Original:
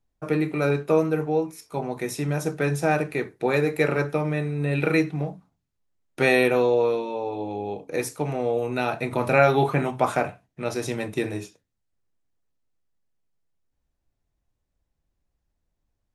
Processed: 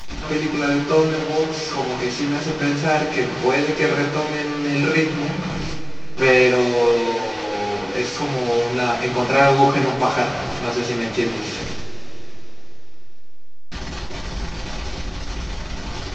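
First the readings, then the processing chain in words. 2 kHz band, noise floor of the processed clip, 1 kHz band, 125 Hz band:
+6.0 dB, −29 dBFS, +6.5 dB, +2.0 dB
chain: linear delta modulator 32 kbit/s, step −25.5 dBFS
coupled-rooms reverb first 0.24 s, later 3.9 s, from −21 dB, DRR −8.5 dB
level −4 dB

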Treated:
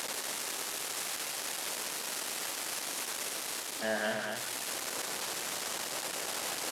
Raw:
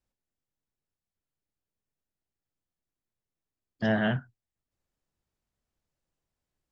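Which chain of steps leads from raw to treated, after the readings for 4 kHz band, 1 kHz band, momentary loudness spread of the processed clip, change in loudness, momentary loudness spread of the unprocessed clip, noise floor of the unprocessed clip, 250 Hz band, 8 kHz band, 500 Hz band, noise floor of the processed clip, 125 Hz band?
+13.5 dB, +4.5 dB, 1 LU, −5.5 dB, 7 LU, below −85 dBFS, −10.5 dB, can't be measured, −0.5 dB, −39 dBFS, −17.0 dB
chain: linear delta modulator 64 kbit/s, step −28.5 dBFS
high-pass filter 420 Hz 12 dB per octave
loudspeakers that aren't time-aligned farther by 36 metres −12 dB, 81 metres −7 dB
in parallel at −4 dB: soft clipping −25.5 dBFS, distortion −16 dB
on the sum: speech leveller within 3 dB 0.5 s
level −4 dB

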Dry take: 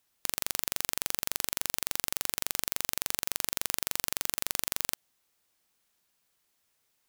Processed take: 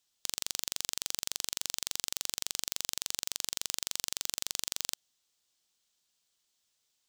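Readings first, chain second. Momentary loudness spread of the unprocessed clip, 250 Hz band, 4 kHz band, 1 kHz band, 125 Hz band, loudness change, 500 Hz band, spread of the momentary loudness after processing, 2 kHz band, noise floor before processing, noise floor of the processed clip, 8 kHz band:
1 LU, −8.0 dB, +1.0 dB, −8.0 dB, −8.0 dB, −3.0 dB, −8.0 dB, 1 LU, −6.5 dB, −75 dBFS, −79 dBFS, −0.5 dB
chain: flat-topped bell 4,900 Hz +9.5 dB
level −8 dB

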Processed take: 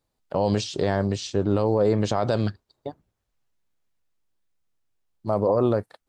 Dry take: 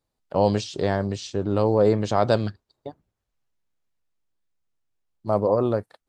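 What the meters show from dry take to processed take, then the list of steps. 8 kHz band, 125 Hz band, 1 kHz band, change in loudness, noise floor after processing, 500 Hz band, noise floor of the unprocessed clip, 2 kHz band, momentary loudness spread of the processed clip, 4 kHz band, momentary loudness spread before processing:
+2.5 dB, +0.5 dB, −2.5 dB, −1.0 dB, −79 dBFS, −1.5 dB, −82 dBFS, −1.0 dB, 17 LU, +1.0 dB, 19 LU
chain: brickwall limiter −13.5 dBFS, peak gain reduction 8.5 dB
level +2.5 dB

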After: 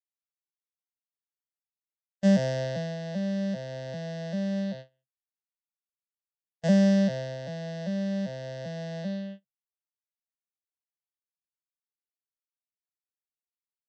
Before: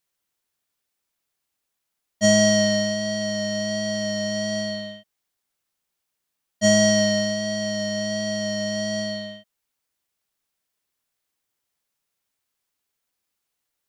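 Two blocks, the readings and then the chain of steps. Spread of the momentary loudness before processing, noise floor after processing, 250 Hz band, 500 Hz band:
11 LU, below −85 dBFS, −2.5 dB, −9.0 dB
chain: vocoder with an arpeggio as carrier major triad, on C3, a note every 393 ms
noise gate −36 dBFS, range −27 dB
level −4 dB

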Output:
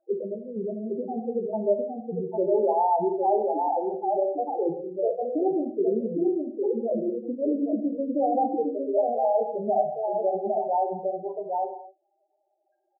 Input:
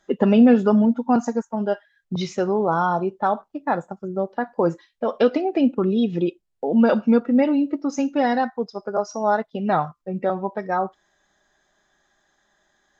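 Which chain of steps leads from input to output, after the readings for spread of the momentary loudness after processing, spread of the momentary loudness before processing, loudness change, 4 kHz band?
8 LU, 10 LU, −5.0 dB, below −40 dB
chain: adaptive Wiener filter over 15 samples
in parallel at −10 dB: soft clipping −19.5 dBFS, distortion −8 dB
on the sum: compressor whose output falls as the input rises −18 dBFS, ratio −0.5
high-pass filter 120 Hz 6 dB per octave
flat-topped bell 510 Hz +8 dB
on a send: multi-tap delay 140/806 ms −19/−3.5 dB
on the sum: spectral peaks only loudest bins 4
transistor ladder low-pass 1,700 Hz, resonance 70%
reverb whose tail is shaped and stops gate 290 ms falling, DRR 4.5 dB

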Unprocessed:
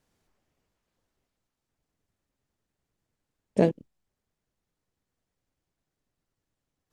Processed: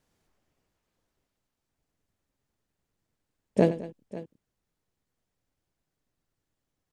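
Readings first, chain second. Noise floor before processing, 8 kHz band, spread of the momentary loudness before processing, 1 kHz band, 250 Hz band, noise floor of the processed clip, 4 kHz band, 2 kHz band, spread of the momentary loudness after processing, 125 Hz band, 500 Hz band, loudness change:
below −85 dBFS, can't be measured, 13 LU, +0.5 dB, 0.0 dB, −84 dBFS, +0.5 dB, +0.5 dB, 18 LU, 0.0 dB, +0.5 dB, −0.5 dB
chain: multi-tap delay 90/211/544 ms −14/−18.5/−17.5 dB

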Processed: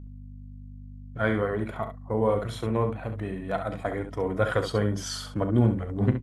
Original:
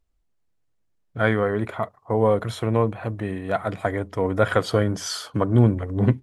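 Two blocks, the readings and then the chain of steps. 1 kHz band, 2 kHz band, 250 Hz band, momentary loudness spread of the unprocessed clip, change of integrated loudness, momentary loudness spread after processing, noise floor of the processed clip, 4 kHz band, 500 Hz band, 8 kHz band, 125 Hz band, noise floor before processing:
−5.0 dB, −5.5 dB, −4.0 dB, 9 LU, −4.5 dB, 20 LU, −42 dBFS, −4.5 dB, −5.0 dB, −4.5 dB, −4.5 dB, −69 dBFS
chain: spectral magnitudes quantised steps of 15 dB
mains hum 50 Hz, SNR 13 dB
on a send: ambience of single reflections 37 ms −13.5 dB, 68 ms −8.5 dB
on the sum: level that may rise only so fast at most 540 dB per second
level −5 dB

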